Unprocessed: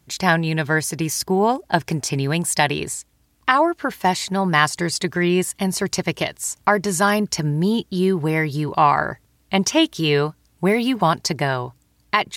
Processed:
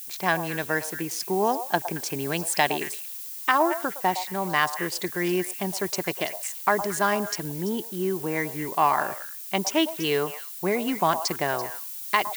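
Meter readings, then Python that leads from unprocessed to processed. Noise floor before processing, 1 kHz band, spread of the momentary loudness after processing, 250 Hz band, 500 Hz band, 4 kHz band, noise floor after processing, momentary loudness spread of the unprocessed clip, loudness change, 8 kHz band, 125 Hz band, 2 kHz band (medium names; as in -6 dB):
-61 dBFS, -4.5 dB, 6 LU, -8.5 dB, -5.0 dB, -6.5 dB, -38 dBFS, 7 LU, -5.5 dB, -6.0 dB, -13.0 dB, -5.5 dB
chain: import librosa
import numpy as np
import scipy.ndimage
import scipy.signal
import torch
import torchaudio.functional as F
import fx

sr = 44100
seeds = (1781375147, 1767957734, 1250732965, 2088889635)

p1 = fx.wiener(x, sr, points=9)
p2 = fx.dmg_noise_colour(p1, sr, seeds[0], colour='violet', level_db=-33.0)
p3 = p2 + fx.echo_stepped(p2, sr, ms=112, hz=740.0, octaves=1.4, feedback_pct=70, wet_db=-8.0, dry=0)
p4 = fx.rider(p3, sr, range_db=10, speed_s=2.0)
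p5 = scipy.signal.sosfilt(scipy.signal.butter(2, 240.0, 'highpass', fs=sr, output='sos'), p4)
y = p5 * 10.0 ** (-5.5 / 20.0)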